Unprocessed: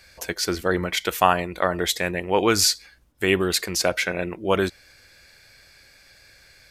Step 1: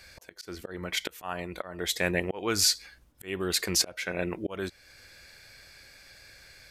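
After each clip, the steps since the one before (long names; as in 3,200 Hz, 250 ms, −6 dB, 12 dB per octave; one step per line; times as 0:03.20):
volume swells 551 ms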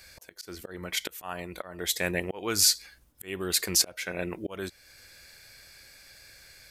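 high-shelf EQ 7,200 Hz +10 dB
level −2 dB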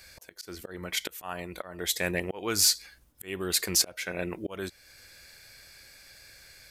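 soft clipping −10.5 dBFS, distortion −23 dB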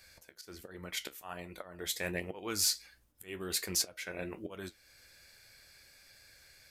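flanger 1.3 Hz, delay 9 ms, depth 6.4 ms, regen −57%
level −3 dB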